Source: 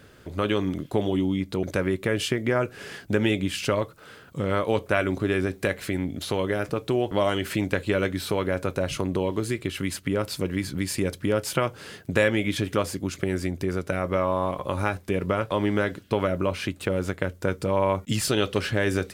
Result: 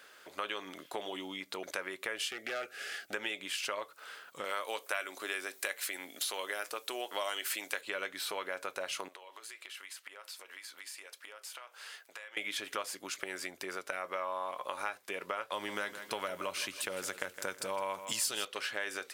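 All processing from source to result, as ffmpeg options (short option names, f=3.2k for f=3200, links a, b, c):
-filter_complex "[0:a]asettb=1/sr,asplit=3[a][b][c];[a]atrim=end=2.294[d];[b]atrim=start=2.29:end=3.13,asetpts=PTS-STARTPTS,afade=t=in:d=0.004:c=qsin,afade=t=out:st=0.836:d=0.004:c=qsin,volume=22dB,asoftclip=hard,volume=-22dB,asuperstop=centerf=990:order=8:qfactor=3.1[e];[c]atrim=start=3.126[f];[d][e]acrossfade=d=0.004:c1=hsin:c2=qsin[g];[g][f]acrossfade=d=0.004:c1=qsin:c2=hsin,asettb=1/sr,asplit=3[h][i][j];[h]atrim=end=4.444[k];[i]atrim=start=4.44:end=7.81,asetpts=PTS-STARTPTS,afade=t=in:d=0.004:c=qsin,afade=t=out:st=3.366:d=0.004:c=qsin,highpass=240,highshelf=f=5k:g=12[l];[j]atrim=start=7.806[m];[k][l]acrossfade=d=0.004:c1=hsin:c2=qsin[n];[n][m]acrossfade=d=0.004:c1=qsin:c2=hsin,asettb=1/sr,asplit=3[o][p][q];[o]atrim=end=9.084[r];[p]atrim=start=9.08:end=12.37,asetpts=PTS-STARTPTS,afade=t=in:d=0.004:c=qsin,afade=t=out:st=3.286:d=0.004:c=qsin,highpass=620,acompressor=threshold=-37dB:ratio=10:attack=3.2:release=140:knee=1:detection=peak,flanger=delay=4.3:depth=4:regen=-83:speed=1.4:shape=sinusoidal[s];[q]atrim=start=12.366[t];[r][s]acrossfade=d=0.004:c1=hsin:c2=qsin[u];[u][t]acrossfade=d=0.004:c1=qsin:c2=hsin,asettb=1/sr,asplit=3[v][w][x];[v]atrim=end=15.524[y];[w]atrim=start=15.52:end=18.45,asetpts=PTS-STARTPTS,afade=t=in:d=0.004:c=qsin,afade=t=out:st=2.926:d=0.004:c=qsin,bass=f=250:g=10,treble=f=4k:g=9,aecho=1:1:161|322|483|644:0.2|0.0818|0.0335|0.0138,atrim=end_sample=129213[z];[x]atrim=start=18.446[aa];[y][z]acrossfade=d=0.004:c1=hsin:c2=qsin[ab];[ab][aa]acrossfade=d=0.004:c1=qsin:c2=hsin,highpass=840,acompressor=threshold=-36dB:ratio=2.5"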